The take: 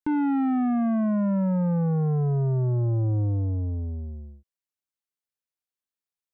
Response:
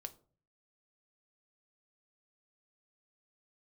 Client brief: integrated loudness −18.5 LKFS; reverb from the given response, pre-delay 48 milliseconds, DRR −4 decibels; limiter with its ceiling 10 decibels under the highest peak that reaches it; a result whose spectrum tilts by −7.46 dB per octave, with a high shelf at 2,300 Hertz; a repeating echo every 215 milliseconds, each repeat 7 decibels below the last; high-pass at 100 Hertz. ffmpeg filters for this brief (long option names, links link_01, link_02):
-filter_complex "[0:a]highpass=100,highshelf=frequency=2300:gain=7,alimiter=level_in=4dB:limit=-24dB:level=0:latency=1,volume=-4dB,aecho=1:1:215|430|645|860|1075:0.447|0.201|0.0905|0.0407|0.0183,asplit=2[link_01][link_02];[1:a]atrim=start_sample=2205,adelay=48[link_03];[link_02][link_03]afir=irnorm=-1:irlink=0,volume=8dB[link_04];[link_01][link_04]amix=inputs=2:normalize=0,volume=10dB"